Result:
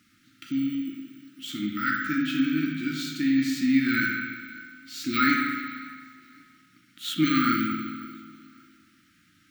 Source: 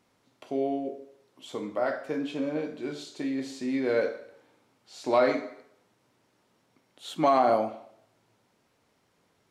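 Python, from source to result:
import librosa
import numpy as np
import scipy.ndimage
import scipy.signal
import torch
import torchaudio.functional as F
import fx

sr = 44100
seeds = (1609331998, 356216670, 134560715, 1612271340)

p1 = fx.low_shelf(x, sr, hz=130.0, db=-6.0)
p2 = p1 + fx.echo_feedback(p1, sr, ms=544, feedback_pct=31, wet_db=-23, dry=0)
p3 = fx.rev_spring(p2, sr, rt60_s=1.6, pass_ms=(38, 59), chirp_ms=40, drr_db=1.0)
p4 = np.repeat(p3[::2], 2)[:len(p3)]
p5 = fx.brickwall_bandstop(p4, sr, low_hz=340.0, high_hz=1200.0)
y = F.gain(torch.from_numpy(p5), 8.5).numpy()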